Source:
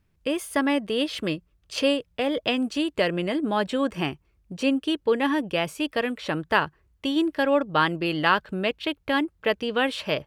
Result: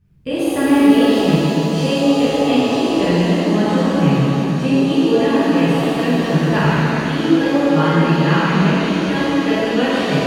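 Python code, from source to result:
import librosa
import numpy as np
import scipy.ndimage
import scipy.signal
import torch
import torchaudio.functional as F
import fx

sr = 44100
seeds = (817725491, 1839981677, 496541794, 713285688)

y = fx.block_float(x, sr, bits=7, at=(5.33, 5.88))
y = fx.peak_eq(y, sr, hz=140.0, db=14.0, octaves=1.1)
y = fx.rider(y, sr, range_db=10, speed_s=2.0)
y = fx.low_shelf(y, sr, hz=270.0, db=6.5)
y = fx.rev_shimmer(y, sr, seeds[0], rt60_s=3.3, semitones=7, shimmer_db=-8, drr_db=-12.0)
y = y * librosa.db_to_amplitude(-9.0)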